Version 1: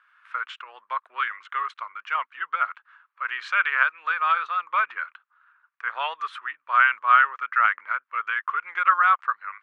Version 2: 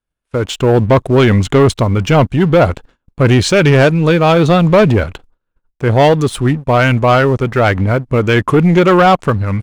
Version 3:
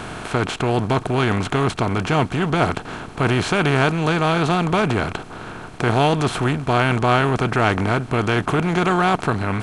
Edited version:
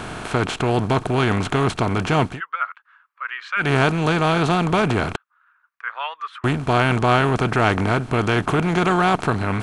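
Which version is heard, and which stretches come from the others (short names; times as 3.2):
3
2.33–3.64 from 1, crossfade 0.16 s
5.16–6.44 from 1
not used: 2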